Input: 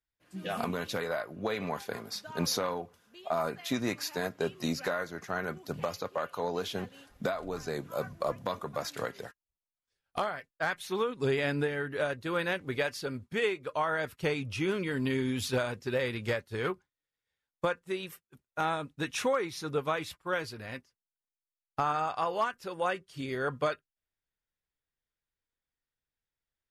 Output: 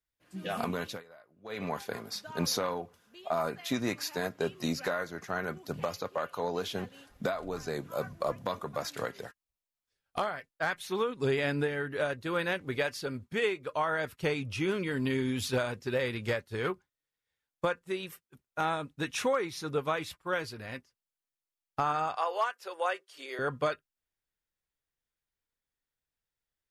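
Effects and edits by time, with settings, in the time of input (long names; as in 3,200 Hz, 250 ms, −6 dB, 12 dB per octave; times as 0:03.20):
0:00.84–0:01.63: duck −21.5 dB, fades 0.19 s
0:22.16–0:23.39: high-pass filter 440 Hz 24 dB per octave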